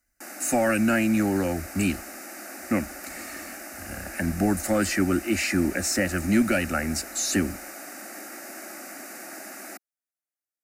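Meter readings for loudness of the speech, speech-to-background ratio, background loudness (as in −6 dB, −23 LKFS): −25.0 LKFS, 13.5 dB, −38.5 LKFS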